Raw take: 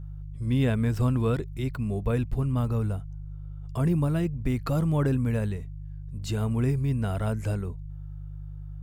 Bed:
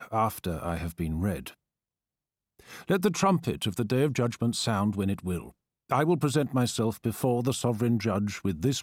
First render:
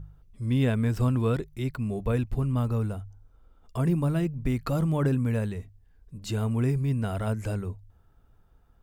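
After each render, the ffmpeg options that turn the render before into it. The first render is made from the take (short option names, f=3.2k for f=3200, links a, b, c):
-af "bandreject=f=50:t=h:w=4,bandreject=f=100:t=h:w=4,bandreject=f=150:t=h:w=4"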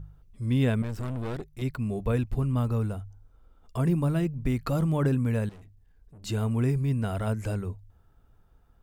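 -filter_complex "[0:a]asettb=1/sr,asplit=3[a][b][c];[a]atrim=end=0.824[d];[b]atrim=start=0.82:end=1.62,asetpts=PTS-STARTPTS,afade=t=in:d=0.004:c=qsin,afade=t=out:st=0.796:d=0.004:c=qsin,aeval=exprs='(tanh(31.6*val(0)+0.65)-tanh(0.65))/31.6':c=same[e];[c]atrim=start=1.616[f];[d][e]acrossfade=d=0.004:c1=hsin:c2=qsin[g];[g][f]acrossfade=d=0.004:c1=qsin:c2=hsin,asettb=1/sr,asplit=3[h][i][j];[h]atrim=end=5.494[k];[i]atrim=start=5.49:end=6.24,asetpts=PTS-STARTPTS,afade=t=in:d=0.004:c=qsin,afade=t=out:st=0.746:d=0.004:c=qsin,aeval=exprs='(tanh(224*val(0)+0.25)-tanh(0.25))/224':c=same[l];[j]atrim=start=6.236[m];[k][l]acrossfade=d=0.004:c1=hsin:c2=qsin[n];[n][m]acrossfade=d=0.004:c1=qsin:c2=hsin"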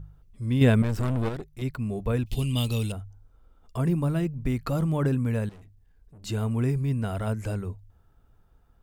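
-filter_complex "[0:a]asettb=1/sr,asplit=3[a][b][c];[a]atrim=end=0.614[d];[b]atrim=start=0.61:end=1.29,asetpts=PTS-STARTPTS,afade=t=in:d=0.004:c=qsin,afade=t=out:st=0.676:d=0.004:c=qsin,acontrast=58[e];[c]atrim=start=1.286[f];[d][e]acrossfade=d=0.004:c1=hsin:c2=qsin[g];[g][f]acrossfade=d=0.004:c1=qsin:c2=hsin,asettb=1/sr,asplit=3[h][i][j];[h]atrim=end=2.264[k];[i]atrim=start=2.26:end=2.92,asetpts=PTS-STARTPTS,afade=t=in:d=0.004:c=qsin,afade=t=out:st=0.656:d=0.004:c=qsin,highshelf=f=2.1k:t=q:w=3:g=14[l];[j]atrim=start=2.916[m];[k][l]acrossfade=d=0.004:c1=hsin:c2=qsin[n];[n][m]acrossfade=d=0.004:c1=qsin:c2=hsin"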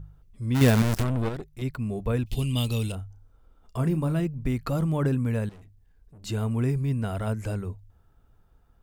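-filter_complex "[0:a]asplit=3[a][b][c];[a]afade=t=out:st=0.54:d=0.02[d];[b]acrusher=bits=5:dc=4:mix=0:aa=0.000001,afade=t=in:st=0.54:d=0.02,afade=t=out:st=1.02:d=0.02[e];[c]afade=t=in:st=1.02:d=0.02[f];[d][e][f]amix=inputs=3:normalize=0,asettb=1/sr,asplit=3[g][h][i];[g]atrim=end=2.854[j];[h]atrim=start=2.85:end=4.2,asetpts=PTS-STARTPTS,afade=t=in:d=0.004:c=qsin,afade=t=out:st=1.346:d=0.004:c=qsin,asplit=2[k][l];[l]adelay=32,volume=-11dB[m];[k][m]amix=inputs=2:normalize=0,atrim=end_sample=59535[n];[i]atrim=start=4.196[o];[j][n]acrossfade=d=0.004:c1=hsin:c2=qsin[p];[p][o]acrossfade=d=0.004:c1=qsin:c2=hsin"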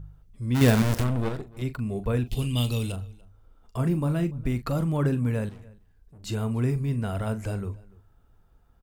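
-filter_complex "[0:a]asplit=2[a][b];[b]adelay=41,volume=-12.5dB[c];[a][c]amix=inputs=2:normalize=0,asplit=2[d][e];[e]adelay=291.5,volume=-23dB,highshelf=f=4k:g=-6.56[f];[d][f]amix=inputs=2:normalize=0"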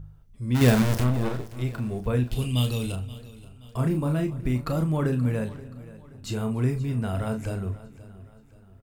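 -filter_complex "[0:a]asplit=2[a][b];[b]adelay=32,volume=-9dB[c];[a][c]amix=inputs=2:normalize=0,aecho=1:1:527|1054|1581|2108:0.126|0.0541|0.0233|0.01"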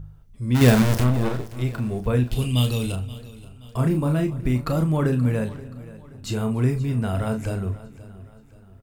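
-af "volume=3.5dB"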